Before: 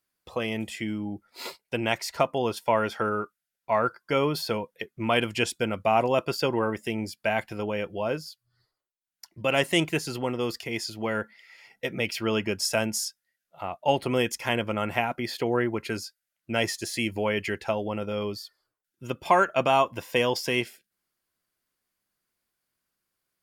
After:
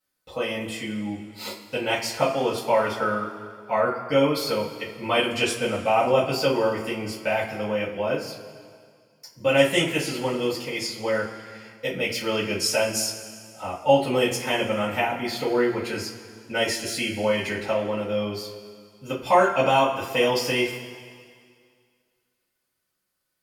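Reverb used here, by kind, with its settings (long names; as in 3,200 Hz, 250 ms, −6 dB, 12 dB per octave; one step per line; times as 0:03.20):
coupled-rooms reverb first 0.24 s, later 2.1 s, from −18 dB, DRR −9 dB
level −6.5 dB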